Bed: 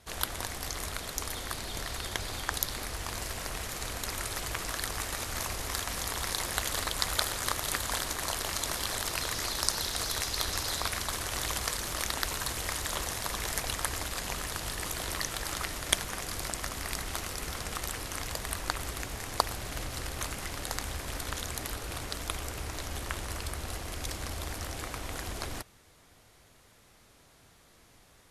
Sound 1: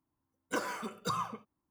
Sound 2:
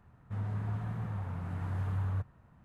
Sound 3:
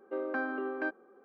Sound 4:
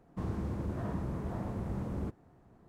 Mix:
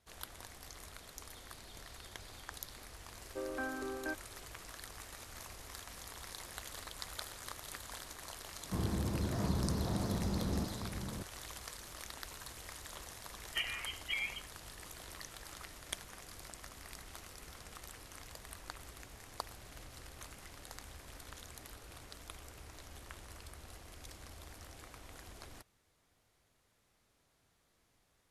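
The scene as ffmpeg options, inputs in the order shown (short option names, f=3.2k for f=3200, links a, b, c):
-filter_complex "[0:a]volume=-15dB[a];[4:a]aecho=1:1:707:0.473[b];[1:a]lowpass=f=2.9k:t=q:w=0.5098,lowpass=f=2.9k:t=q:w=0.6013,lowpass=f=2.9k:t=q:w=0.9,lowpass=f=2.9k:t=q:w=2.563,afreqshift=-3400[c];[3:a]atrim=end=1.24,asetpts=PTS-STARTPTS,volume=-6dB,afade=t=in:d=0.004:c=hsin,afade=t=out:st=1.236:d=0.004:c=hsin,adelay=3240[d];[b]atrim=end=2.68,asetpts=PTS-STARTPTS,afade=t=in:d=0.004:c=hsin,afade=t=out:st=2.676:d=0.004:c=hsin,adelay=8550[e];[c]atrim=end=1.7,asetpts=PTS-STARTPTS,volume=-3.5dB,afade=t=in:d=0.004:c=hsin,afade=t=out:st=1.696:d=0.004:c=hsin,adelay=13030[f];[a][d][e][f]amix=inputs=4:normalize=0"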